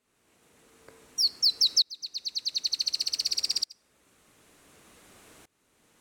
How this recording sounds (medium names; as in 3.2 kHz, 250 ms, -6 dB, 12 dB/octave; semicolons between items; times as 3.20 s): tremolo saw up 0.55 Hz, depth 95%